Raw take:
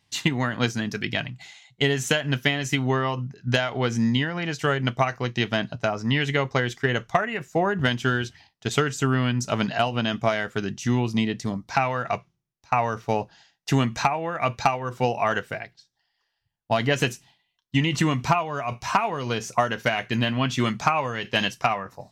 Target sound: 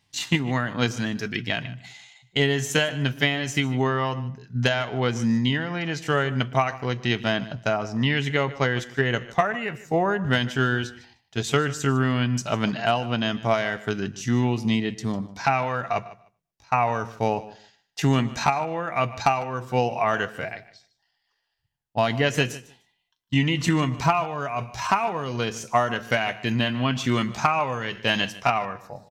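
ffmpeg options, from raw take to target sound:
-filter_complex "[0:a]asplit=2[s0][s1];[s1]adelay=89,lowpass=f=2800:p=1,volume=0.0891,asplit=2[s2][s3];[s3]adelay=89,lowpass=f=2800:p=1,volume=0.22[s4];[s2][s4]amix=inputs=2:normalize=0[s5];[s0][s5]amix=inputs=2:normalize=0,atempo=0.76,asplit=2[s6][s7];[s7]aecho=0:1:151|302:0.126|0.0214[s8];[s6][s8]amix=inputs=2:normalize=0"

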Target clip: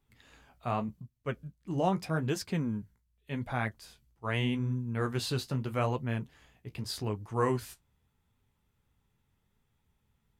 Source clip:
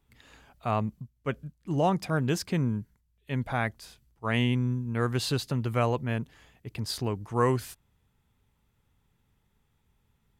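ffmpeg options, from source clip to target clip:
-af "flanger=delay=7.6:depth=9.9:regen=-42:speed=0.83:shape=triangular"

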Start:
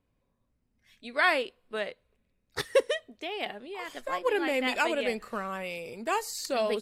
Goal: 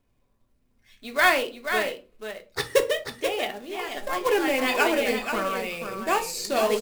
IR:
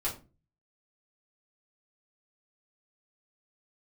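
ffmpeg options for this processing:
-filter_complex "[0:a]acrusher=bits=3:mode=log:mix=0:aa=0.000001,aecho=1:1:485:0.422,asplit=2[s0][s1];[1:a]atrim=start_sample=2205[s2];[s1][s2]afir=irnorm=-1:irlink=0,volume=0.447[s3];[s0][s3]amix=inputs=2:normalize=0,volume=1.12"

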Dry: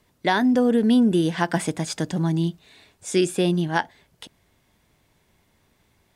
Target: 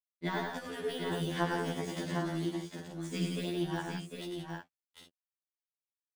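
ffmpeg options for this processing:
-filter_complex "[0:a]deesser=0.8,afftfilt=real='re*lt(hypot(re,im),0.631)':imag='im*lt(hypot(re,im),0.631)':win_size=1024:overlap=0.75,acompressor=threshold=0.0282:ratio=2,aeval=exprs='sgn(val(0))*max(abs(val(0))-0.00398,0)':c=same,asplit=2[s0][s1];[s1]aecho=0:1:59|99|114|171|755|803:0.168|0.562|0.158|0.398|0.501|0.316[s2];[s0][s2]amix=inputs=2:normalize=0,afftfilt=real='re*2*eq(mod(b,4),0)':imag='im*2*eq(mod(b,4),0)':win_size=2048:overlap=0.75,volume=0.841"

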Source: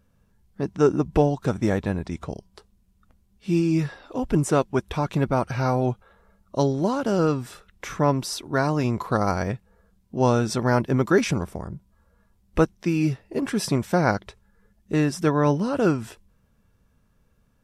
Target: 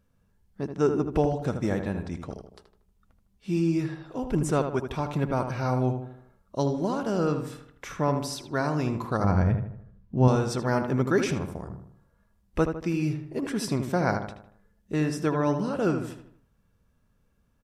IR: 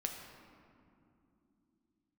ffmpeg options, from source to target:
-filter_complex "[0:a]asettb=1/sr,asplit=3[s0][s1][s2];[s0]atrim=end=9.244[s3];[s1]atrim=start=9.24:end=10.28,asetpts=PTS-STARTPTS,afade=t=in:d=0.004:c=qsin,afade=t=out:st=1.036:d=0.004:c=qsin,bass=f=250:g=11,treble=f=4000:g=-12[s4];[s2]atrim=start=10.276[s5];[s3][s4]acrossfade=d=0.004:c1=hsin:c2=qsin[s6];[s6][s5]acrossfade=d=0.004:c1=qsin:c2=hsin,asplit=2[s7][s8];[s8]adelay=78,lowpass=f=2400:p=1,volume=0.447,asplit=2[s9][s10];[s10]adelay=78,lowpass=f=2400:p=1,volume=0.47,asplit=2[s11][s12];[s12]adelay=78,lowpass=f=2400:p=1,volume=0.47,asplit=2[s13][s14];[s14]adelay=78,lowpass=f=2400:p=1,volume=0.47,asplit=2[s15][s16];[s16]adelay=78,lowpass=f=2400:p=1,volume=0.47,asplit=2[s17][s18];[s18]adelay=78,lowpass=f=2400:p=1,volume=0.47[s19];[s7][s9][s11][s13][s15][s17][s19]amix=inputs=7:normalize=0,volume=0.562"

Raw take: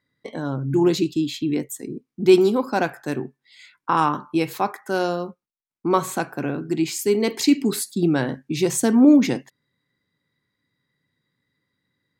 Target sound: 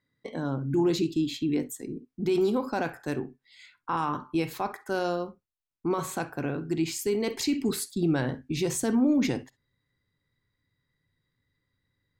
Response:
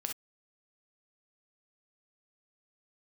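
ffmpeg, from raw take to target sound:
-filter_complex "[0:a]asubboost=boost=7.5:cutoff=67,alimiter=limit=0.178:level=0:latency=1:release=11,asplit=2[s0][s1];[1:a]atrim=start_sample=2205,lowpass=8000,lowshelf=f=490:g=11.5[s2];[s1][s2]afir=irnorm=-1:irlink=0,volume=0.224[s3];[s0][s3]amix=inputs=2:normalize=0,volume=0.501"

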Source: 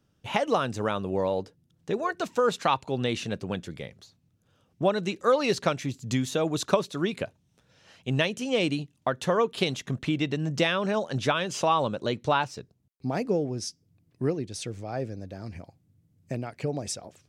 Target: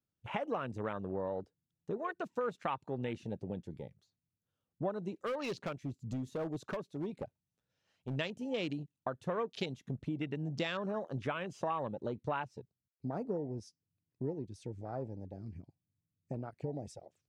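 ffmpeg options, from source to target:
-filter_complex "[0:a]afwtdn=0.02,acompressor=threshold=0.0316:ratio=2,asplit=3[s0][s1][s2];[s0]afade=t=out:st=5.25:d=0.02[s3];[s1]asoftclip=type=hard:threshold=0.0473,afade=t=in:st=5.25:d=0.02,afade=t=out:st=8.15:d=0.02[s4];[s2]afade=t=in:st=8.15:d=0.02[s5];[s3][s4][s5]amix=inputs=3:normalize=0,volume=0.501"

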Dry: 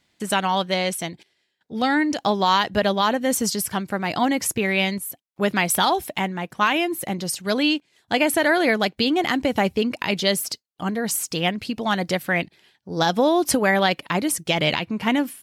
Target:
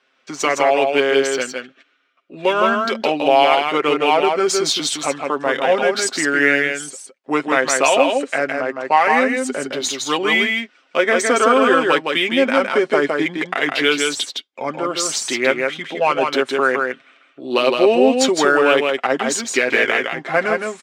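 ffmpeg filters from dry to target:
-filter_complex "[0:a]highpass=f=400:w=0.5412,highpass=f=400:w=1.3066,aecho=1:1:5.6:0.53,asplit=2[s0][s1];[s1]alimiter=limit=0.251:level=0:latency=1:release=215,volume=0.891[s2];[s0][s2]amix=inputs=2:normalize=0,adynamicsmooth=sensitivity=2.5:basefreq=7000,aecho=1:1:120:0.631,asetrate=32667,aresample=44100"

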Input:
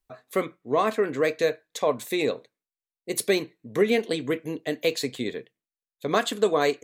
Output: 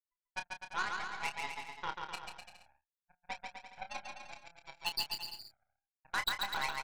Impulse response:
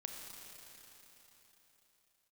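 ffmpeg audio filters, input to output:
-filter_complex "[0:a]asplit=3[s0][s1][s2];[s0]afade=t=out:st=2.16:d=0.02[s3];[s1]lowpass=1800,afade=t=in:st=2.16:d=0.02,afade=t=out:st=4.29:d=0.02[s4];[s2]afade=t=in:st=4.29:d=0.02[s5];[s3][s4][s5]amix=inputs=3:normalize=0,afftfilt=real='re*gte(hypot(re,im),0.112)':imag='im*gte(hypot(re,im),0.112)':win_size=1024:overlap=0.75,aderivative,bandreject=f=60:t=h:w=6,bandreject=f=120:t=h:w=6,bandreject=f=180:t=h:w=6,bandreject=f=240:t=h:w=6,bandreject=f=300:t=h:w=6,bandreject=f=360:t=h:w=6,bandreject=f=420:t=h:w=6,bandreject=f=480:t=h:w=6,bandreject=f=540:t=h:w=6,afreqshift=360,aeval=exprs='0.0473*(cos(1*acos(clip(val(0)/0.0473,-1,1)))-cos(1*PI/2))+0.0188*(cos(2*acos(clip(val(0)/0.0473,-1,1)))-cos(2*PI/2))+0.00668*(cos(7*acos(clip(val(0)/0.0473,-1,1)))-cos(7*PI/2))':c=same,asoftclip=type=tanh:threshold=0.02,asplit=2[s6][s7];[s7]adelay=29,volume=0.376[s8];[s6][s8]amix=inputs=2:normalize=0,aecho=1:1:140|252|341.6|413.3|470.6:0.631|0.398|0.251|0.158|0.1,volume=3.16"

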